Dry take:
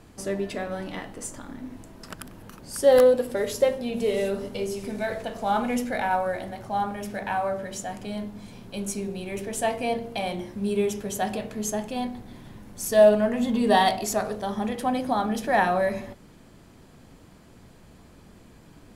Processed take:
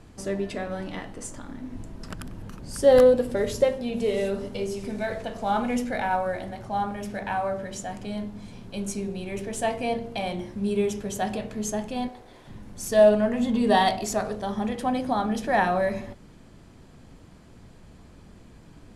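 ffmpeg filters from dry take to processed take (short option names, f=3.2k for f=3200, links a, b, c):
-filter_complex "[0:a]asettb=1/sr,asplit=3[a][b][c];[a]atrim=end=1.734[d];[b]atrim=start=1.73:end=3.64,asetpts=PTS-STARTPTS,afade=t=in:d=0.004:c=qsin,afade=t=out:st=1.906:d=0.004:c=qsin,lowshelf=f=250:g=6.5[e];[c]atrim=start=3.636[f];[d][e]acrossfade=d=0.004:c1=hsin:c2=qsin[g];[g][f]acrossfade=d=0.004:c1=qsin:c2=hsin,asettb=1/sr,asplit=3[h][i][j];[h]atrim=end=12.084[k];[i]atrim=start=12.08:end=12.48,asetpts=PTS-STARTPTS,afade=t=in:d=0.004:c=qsin,afade=t=out:st=0.396:d=0.004:c=qsin,lowshelf=f=310:t=q:w=1.5:g=-12[l];[j]atrim=start=12.476[m];[k][l]acrossfade=d=0.004:c1=hsin:c2=qsin[n];[n][m]acrossfade=d=0.004:c1=qsin:c2=hsin,lowpass=9.9k,lowshelf=f=140:g=5.5,volume=-1dB"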